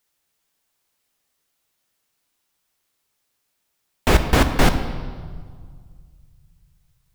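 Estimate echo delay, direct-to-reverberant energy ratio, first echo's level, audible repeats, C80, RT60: no echo, 7.5 dB, no echo, no echo, 10.5 dB, 1.9 s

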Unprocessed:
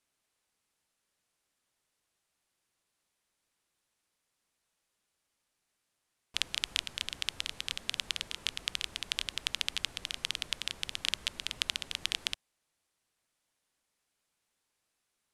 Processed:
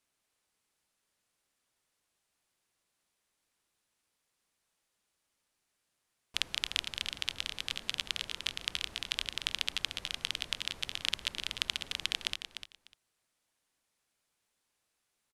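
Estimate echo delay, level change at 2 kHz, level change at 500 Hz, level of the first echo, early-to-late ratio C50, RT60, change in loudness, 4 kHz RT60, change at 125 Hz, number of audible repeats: 299 ms, +0.5 dB, +0.5 dB, -9.5 dB, no reverb, no reverb, 0.0 dB, no reverb, +0.5 dB, 2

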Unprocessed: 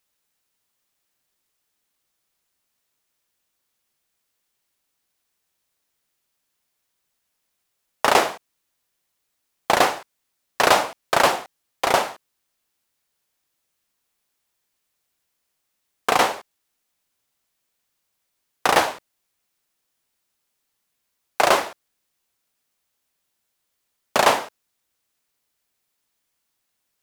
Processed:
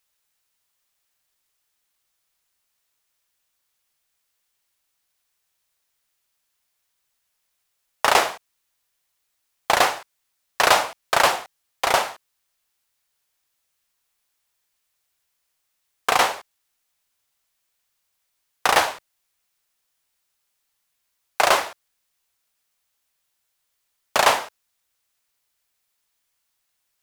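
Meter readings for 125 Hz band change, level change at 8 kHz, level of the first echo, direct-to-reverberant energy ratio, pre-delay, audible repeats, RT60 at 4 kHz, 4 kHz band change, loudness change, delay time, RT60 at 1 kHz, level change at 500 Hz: -3.5 dB, +1.5 dB, no echo, no reverb, no reverb, no echo, no reverb, +1.5 dB, 0.0 dB, no echo, no reverb, -2.5 dB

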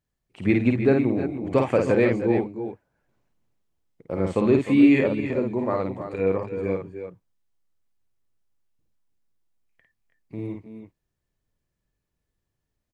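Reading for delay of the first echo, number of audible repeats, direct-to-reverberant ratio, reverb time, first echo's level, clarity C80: 52 ms, 2, no reverb, no reverb, -4.0 dB, no reverb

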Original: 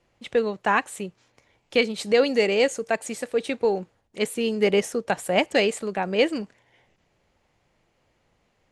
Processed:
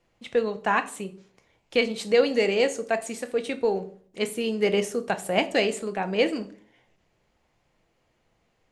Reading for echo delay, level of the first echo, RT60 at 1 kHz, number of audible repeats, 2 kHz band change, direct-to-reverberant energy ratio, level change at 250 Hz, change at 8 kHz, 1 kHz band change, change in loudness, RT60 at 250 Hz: no echo, no echo, 0.45 s, no echo, -2.0 dB, 8.5 dB, -1.5 dB, -2.0 dB, -1.5 dB, -2.0 dB, 0.60 s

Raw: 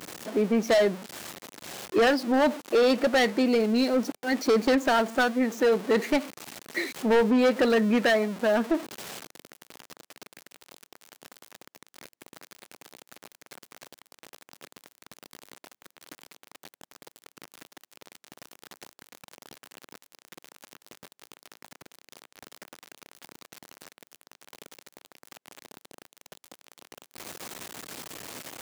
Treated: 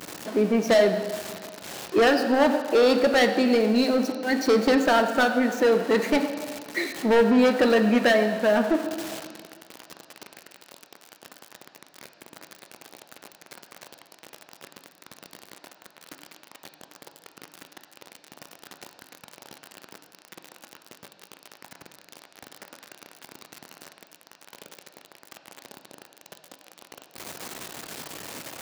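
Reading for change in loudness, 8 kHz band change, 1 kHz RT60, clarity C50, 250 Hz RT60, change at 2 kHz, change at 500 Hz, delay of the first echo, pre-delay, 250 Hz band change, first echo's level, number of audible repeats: +3.0 dB, +2.0 dB, 1.7 s, 7.5 dB, 1.7 s, +3.0 dB, +3.0 dB, no echo, 6 ms, +2.5 dB, no echo, no echo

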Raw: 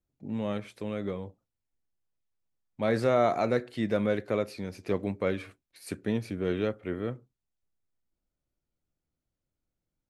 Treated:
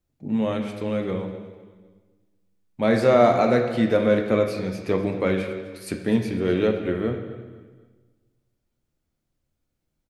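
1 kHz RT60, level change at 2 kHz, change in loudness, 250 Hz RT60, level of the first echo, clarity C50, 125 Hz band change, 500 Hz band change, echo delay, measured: 1.4 s, +7.5 dB, +8.0 dB, 1.6 s, -17.5 dB, 6.5 dB, +7.0 dB, +8.0 dB, 254 ms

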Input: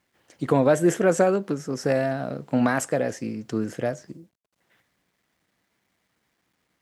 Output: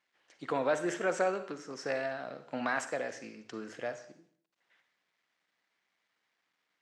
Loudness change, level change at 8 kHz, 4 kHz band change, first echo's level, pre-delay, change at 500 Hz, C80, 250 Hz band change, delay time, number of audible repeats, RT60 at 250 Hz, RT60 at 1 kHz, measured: -11.0 dB, -11.5 dB, -6.0 dB, no echo, 39 ms, -11.0 dB, 14.0 dB, -16.0 dB, no echo, no echo, 0.50 s, 0.50 s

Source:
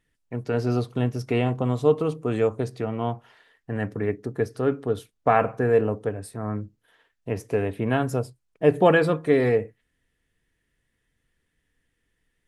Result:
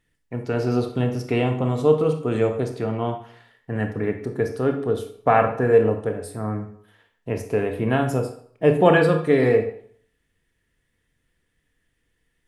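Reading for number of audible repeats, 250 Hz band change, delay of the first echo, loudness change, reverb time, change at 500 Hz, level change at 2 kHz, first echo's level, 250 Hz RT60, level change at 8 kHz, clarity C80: no echo, +2.5 dB, no echo, +2.5 dB, 0.60 s, +3.0 dB, +2.5 dB, no echo, 0.50 s, no reading, 12.5 dB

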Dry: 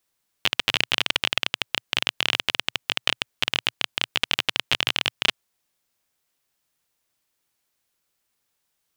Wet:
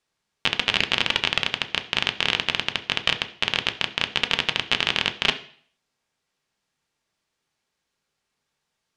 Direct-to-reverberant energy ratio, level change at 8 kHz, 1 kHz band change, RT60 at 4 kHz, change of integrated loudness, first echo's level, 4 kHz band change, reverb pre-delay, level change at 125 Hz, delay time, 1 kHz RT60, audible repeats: 6.0 dB, -3.0 dB, +2.5 dB, 0.50 s, +1.0 dB, no echo, +0.5 dB, 3 ms, +3.5 dB, no echo, 0.50 s, no echo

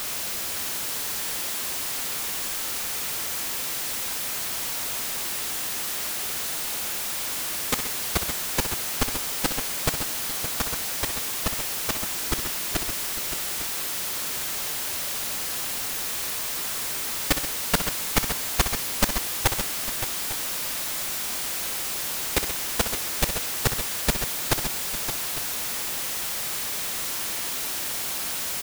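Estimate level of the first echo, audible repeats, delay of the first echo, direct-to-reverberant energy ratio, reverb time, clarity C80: -10.0 dB, 4, 63 ms, no reverb, no reverb, no reverb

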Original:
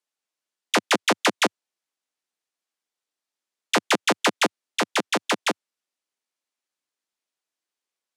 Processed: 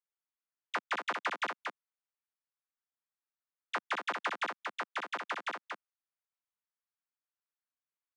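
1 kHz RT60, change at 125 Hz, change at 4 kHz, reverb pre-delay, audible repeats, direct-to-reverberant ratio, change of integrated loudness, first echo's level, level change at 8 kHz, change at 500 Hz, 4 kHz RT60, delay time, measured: no reverb, under -25 dB, -18.5 dB, no reverb, 1, no reverb, -13.5 dB, -5.0 dB, -25.5 dB, -17.5 dB, no reverb, 232 ms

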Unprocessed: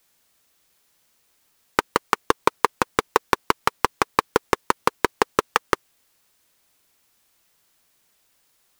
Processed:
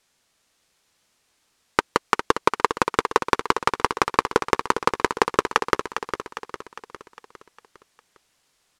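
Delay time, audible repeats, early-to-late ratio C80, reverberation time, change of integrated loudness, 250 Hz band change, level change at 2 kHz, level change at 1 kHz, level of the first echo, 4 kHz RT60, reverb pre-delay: 405 ms, 5, no reverb, no reverb, +0.5 dB, +1.0 dB, +1.0 dB, +1.0 dB, -8.5 dB, no reverb, no reverb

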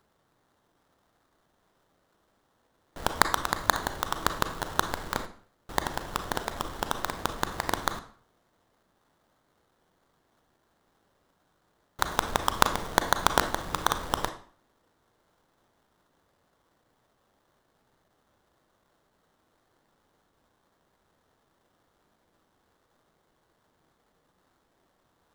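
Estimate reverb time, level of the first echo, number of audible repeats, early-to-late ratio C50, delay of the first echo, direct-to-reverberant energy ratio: 0.50 s, no echo, no echo, 11.5 dB, no echo, 8.5 dB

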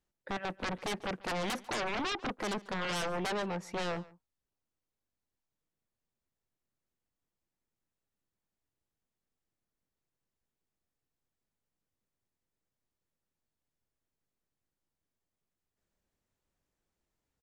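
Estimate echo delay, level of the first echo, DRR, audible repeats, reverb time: 143 ms, -21.5 dB, no reverb, 1, no reverb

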